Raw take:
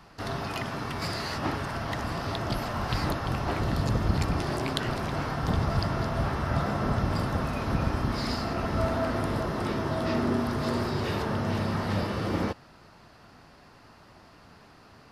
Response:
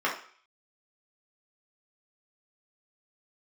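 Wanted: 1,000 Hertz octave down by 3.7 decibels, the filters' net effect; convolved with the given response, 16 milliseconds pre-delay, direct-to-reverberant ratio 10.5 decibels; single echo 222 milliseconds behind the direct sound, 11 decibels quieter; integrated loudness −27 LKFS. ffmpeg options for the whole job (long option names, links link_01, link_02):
-filter_complex "[0:a]equalizer=frequency=1000:width_type=o:gain=-5,aecho=1:1:222:0.282,asplit=2[link_01][link_02];[1:a]atrim=start_sample=2205,adelay=16[link_03];[link_02][link_03]afir=irnorm=-1:irlink=0,volume=-22.5dB[link_04];[link_01][link_04]amix=inputs=2:normalize=0,volume=3dB"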